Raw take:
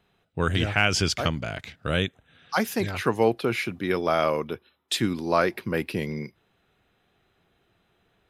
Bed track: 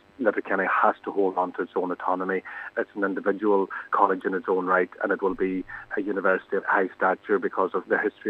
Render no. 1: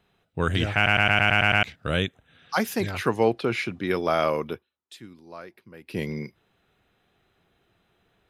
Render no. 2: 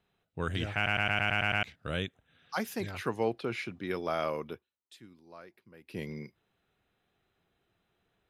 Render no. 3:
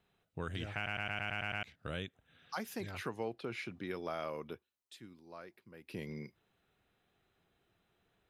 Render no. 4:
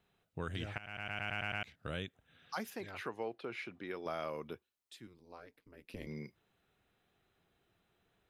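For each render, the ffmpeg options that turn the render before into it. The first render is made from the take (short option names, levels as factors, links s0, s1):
-filter_complex "[0:a]asettb=1/sr,asplit=3[s0][s1][s2];[s0]atrim=end=3.164[s3];[s1]atrim=start=3.16:end=3.87,asetpts=PTS-STARTPTS,afade=t=in:d=0.004:c=qsin,afade=t=out:st=0.706:d=0.004:c=qsin,lowpass=8000[s4];[s2]atrim=start=3.866[s5];[s3][s4]acrossfade=d=0.004:c1=hsin:c2=qsin[s6];[s6][s5]acrossfade=d=0.004:c1=qsin:c2=hsin,asplit=11[s7][s8][s9][s10][s11][s12][s13][s14][s15][s16][s17];[s7]atrim=end=0.862[s18];[s8]atrim=start=0.748:end=0.862[s19];[s9]atrim=start=0.748:end=0.862[s20];[s10]atrim=start=0.748:end=0.862[s21];[s11]atrim=start=0.748:end=0.862[s22];[s12]atrim=start=0.748:end=0.862[s23];[s13]atrim=start=0.748:end=0.862[s24];[s14]atrim=start=0.748:end=0.862[s25];[s15]atrim=start=1.628:end=4.66,asetpts=PTS-STARTPTS,afade=t=out:st=2.902:d=0.13:silence=0.105925[s26];[s16]atrim=start=4.66:end=5.86,asetpts=PTS-STARTPTS,volume=0.106[s27];[s17]atrim=start=5.86,asetpts=PTS-STARTPTS,afade=t=in:d=0.13:silence=0.105925[s28];[s18][s19]acrossfade=d=0.004:c1=hsin:c2=hsin[s29];[s29][s20]acrossfade=d=0.004:c1=hsin:c2=hsin[s30];[s30][s21]acrossfade=d=0.004:c1=hsin:c2=hsin[s31];[s31][s22]acrossfade=d=0.004:c1=hsin:c2=hsin[s32];[s32][s23]acrossfade=d=0.004:c1=hsin:c2=hsin[s33];[s33][s24]acrossfade=d=0.004:c1=hsin:c2=hsin[s34];[s34][s25]acrossfade=d=0.004:c1=hsin:c2=hsin[s35];[s26][s27][s28]concat=n=3:v=0:a=1[s36];[s35][s36]acrossfade=d=0.004:c1=hsin:c2=hsin"
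-af "volume=0.355"
-af "acompressor=threshold=0.00794:ratio=2"
-filter_complex "[0:a]asettb=1/sr,asplit=3[s0][s1][s2];[s0]atrim=end=2.704[s3];[s1]atrim=start=2.7:end=4.06,asetpts=PTS-STARTPTS,afade=t=in:d=0.004:c=qsin,afade=t=out:st=1.356:d=0.004:c=qsin,bass=f=250:g=-9,treble=f=4000:g=-7[s4];[s2]atrim=start=4.056[s5];[s3][s4]acrossfade=d=0.004:c1=hsin:c2=qsin[s6];[s6][s5]acrossfade=d=0.004:c1=qsin:c2=hsin,asettb=1/sr,asplit=3[s7][s8][s9];[s7]atrim=end=5.074[s10];[s8]atrim=start=5.07:end=6.07,asetpts=PTS-STARTPTS,afade=t=in:d=0.004:c=qsin,afade=t=out:st=0.996:d=0.004:c=qsin,aeval=exprs='val(0)*sin(2*PI*89*n/s)':c=same[s11];[s9]atrim=start=6.066[s12];[s10][s11]acrossfade=d=0.004:c1=hsin:c2=qsin[s13];[s13][s12]acrossfade=d=0.004:c1=qsin:c2=hsin,asplit=2[s14][s15];[s14]atrim=end=0.78,asetpts=PTS-STARTPTS,afade=t=out:st=0.776:d=0.004:c=hsin:silence=0.133352[s16];[s15]atrim=start=0.78,asetpts=PTS-STARTPTS,afade=t=in:d=0.65:c=qsin:silence=0.133352[s17];[s16][s17]concat=n=2:v=0:a=1"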